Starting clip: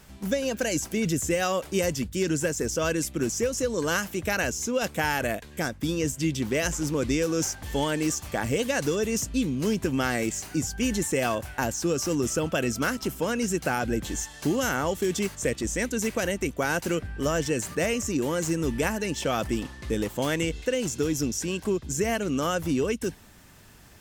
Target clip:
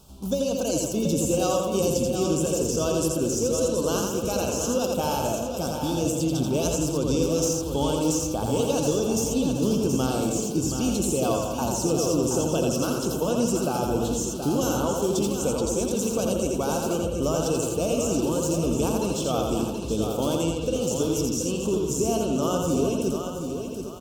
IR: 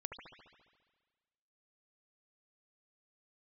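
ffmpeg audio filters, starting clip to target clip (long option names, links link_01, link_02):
-filter_complex "[0:a]asuperstop=centerf=1900:order=4:qfactor=1,aecho=1:1:726|1452|2178|2904:0.422|0.143|0.0487|0.0166,asplit=2[link_01][link_02];[1:a]atrim=start_sample=2205,afade=type=out:start_time=0.33:duration=0.01,atrim=end_sample=14994,adelay=84[link_03];[link_02][link_03]afir=irnorm=-1:irlink=0,volume=1dB[link_04];[link_01][link_04]amix=inputs=2:normalize=0"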